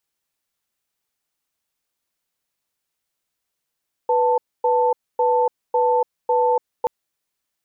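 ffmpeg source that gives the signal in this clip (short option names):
-f lavfi -i "aevalsrc='0.133*(sin(2*PI*493*t)+sin(2*PI*885*t))*clip(min(mod(t,0.55),0.29-mod(t,0.55))/0.005,0,1)':d=2.78:s=44100"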